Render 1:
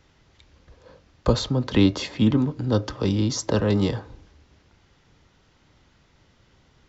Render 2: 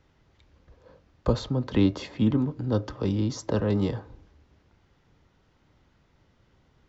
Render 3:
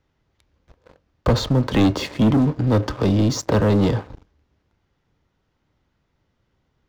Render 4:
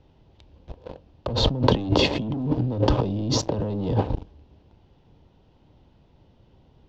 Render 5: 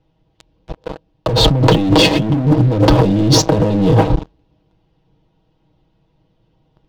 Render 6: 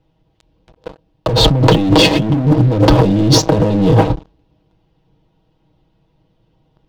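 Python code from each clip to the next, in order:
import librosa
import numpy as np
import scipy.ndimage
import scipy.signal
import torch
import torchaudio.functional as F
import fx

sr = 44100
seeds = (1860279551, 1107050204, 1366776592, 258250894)

y1 = fx.high_shelf(x, sr, hz=2300.0, db=-8.0)
y1 = F.gain(torch.from_numpy(y1), -3.5).numpy()
y2 = fx.leveller(y1, sr, passes=3)
y3 = fx.band_shelf(y2, sr, hz=1600.0, db=-10.5, octaves=1.2)
y3 = fx.over_compress(y3, sr, threshold_db=-28.0, ratio=-1.0)
y3 = fx.air_absorb(y3, sr, metres=190.0)
y3 = F.gain(torch.from_numpy(y3), 5.0).numpy()
y4 = y3 + 0.73 * np.pad(y3, (int(6.3 * sr / 1000.0), 0))[:len(y3)]
y4 = fx.rider(y4, sr, range_db=10, speed_s=2.0)
y4 = fx.leveller(y4, sr, passes=3)
y5 = fx.end_taper(y4, sr, db_per_s=260.0)
y5 = F.gain(torch.from_numpy(y5), 1.0).numpy()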